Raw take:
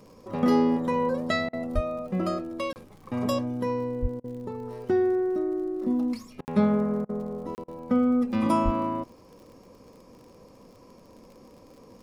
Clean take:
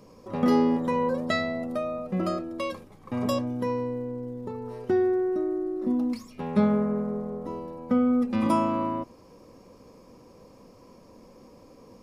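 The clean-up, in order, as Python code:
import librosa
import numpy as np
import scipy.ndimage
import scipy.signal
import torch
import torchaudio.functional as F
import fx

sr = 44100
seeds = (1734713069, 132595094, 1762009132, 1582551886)

y = fx.fix_declick_ar(x, sr, threshold=6.5)
y = fx.fix_deplosive(y, sr, at_s=(1.74, 4.01, 8.64))
y = fx.fix_interpolate(y, sr, at_s=(2.73, 6.45, 7.55), length_ms=29.0)
y = fx.fix_interpolate(y, sr, at_s=(1.49, 4.2, 6.41, 7.05, 7.64), length_ms=40.0)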